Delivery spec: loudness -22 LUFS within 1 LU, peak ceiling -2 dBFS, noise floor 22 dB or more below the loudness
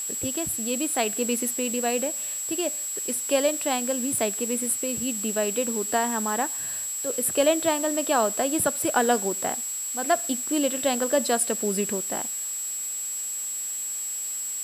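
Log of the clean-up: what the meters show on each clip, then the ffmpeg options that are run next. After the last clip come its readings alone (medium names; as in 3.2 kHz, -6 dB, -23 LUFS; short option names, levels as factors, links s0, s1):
steady tone 7.7 kHz; tone level -29 dBFS; noise floor -32 dBFS; noise floor target -47 dBFS; loudness -25.0 LUFS; peak level -8.0 dBFS; loudness target -22.0 LUFS
-> -af "bandreject=f=7700:w=30"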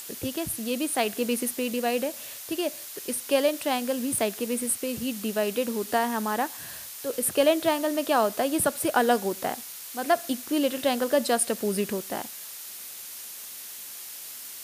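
steady tone not found; noise floor -41 dBFS; noise floor target -50 dBFS
-> -af "afftdn=nr=9:nf=-41"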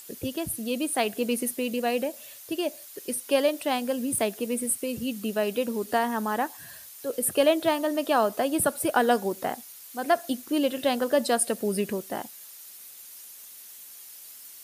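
noise floor -46 dBFS; noise floor target -49 dBFS
-> -af "afftdn=nr=6:nf=-46"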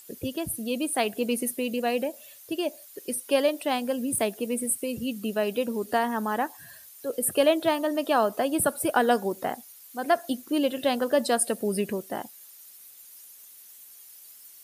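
noise floor -50 dBFS; loudness -27.0 LUFS; peak level -9.0 dBFS; loudness target -22.0 LUFS
-> -af "volume=1.78"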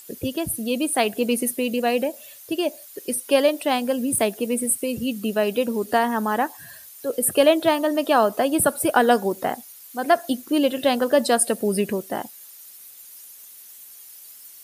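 loudness -22.0 LUFS; peak level -4.0 dBFS; noise floor -45 dBFS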